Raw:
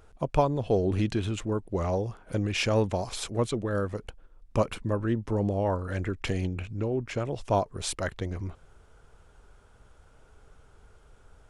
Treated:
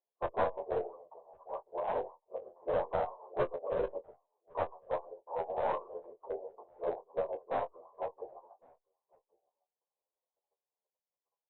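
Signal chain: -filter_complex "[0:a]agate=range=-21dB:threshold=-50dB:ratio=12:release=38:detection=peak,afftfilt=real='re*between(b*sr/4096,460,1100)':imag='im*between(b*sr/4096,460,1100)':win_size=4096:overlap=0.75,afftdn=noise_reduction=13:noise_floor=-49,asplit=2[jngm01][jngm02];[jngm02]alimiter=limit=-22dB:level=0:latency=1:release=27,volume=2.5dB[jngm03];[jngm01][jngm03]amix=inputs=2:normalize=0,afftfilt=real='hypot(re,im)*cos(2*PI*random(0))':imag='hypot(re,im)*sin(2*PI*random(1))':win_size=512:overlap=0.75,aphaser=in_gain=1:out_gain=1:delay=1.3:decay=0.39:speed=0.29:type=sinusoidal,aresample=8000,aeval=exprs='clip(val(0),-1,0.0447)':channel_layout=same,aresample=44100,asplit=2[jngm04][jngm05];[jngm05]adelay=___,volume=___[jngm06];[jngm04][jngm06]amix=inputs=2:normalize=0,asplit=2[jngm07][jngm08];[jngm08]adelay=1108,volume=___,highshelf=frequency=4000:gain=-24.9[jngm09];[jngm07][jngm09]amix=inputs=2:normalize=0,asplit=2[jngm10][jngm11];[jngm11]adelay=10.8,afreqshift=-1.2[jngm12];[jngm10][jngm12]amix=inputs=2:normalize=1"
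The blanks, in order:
23, -10.5dB, -29dB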